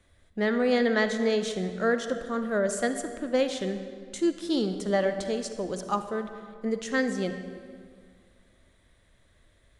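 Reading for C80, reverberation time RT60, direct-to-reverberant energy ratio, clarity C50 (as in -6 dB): 9.5 dB, 2.1 s, 8.0 dB, 8.5 dB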